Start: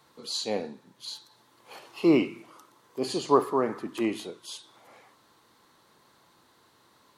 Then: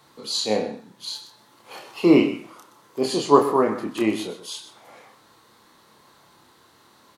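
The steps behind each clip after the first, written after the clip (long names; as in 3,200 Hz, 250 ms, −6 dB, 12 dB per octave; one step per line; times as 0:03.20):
double-tracking delay 28 ms −4.5 dB
single-tap delay 126 ms −13.5 dB
level +5 dB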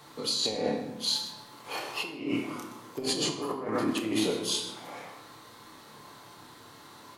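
compressor whose output falls as the input rises −30 dBFS, ratio −1
on a send at −4 dB: convolution reverb RT60 1.0 s, pre-delay 7 ms
on the sum: level −3.5 dB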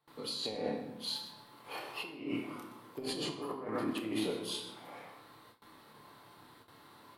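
parametric band 6,500 Hz −11.5 dB 0.66 octaves
noise gate with hold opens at −41 dBFS
level −6.5 dB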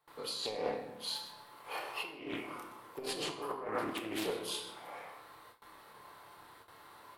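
octave-band graphic EQ 125/250/4,000 Hz −8/−11/−5 dB
highs frequency-modulated by the lows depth 0.3 ms
level +4 dB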